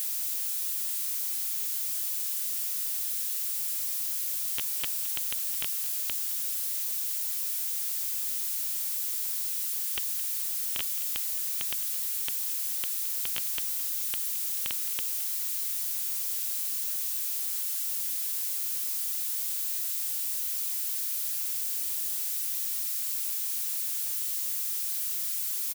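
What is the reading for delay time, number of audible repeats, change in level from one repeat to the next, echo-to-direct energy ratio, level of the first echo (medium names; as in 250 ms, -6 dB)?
216 ms, 2, -7.5 dB, -15.5 dB, -16.0 dB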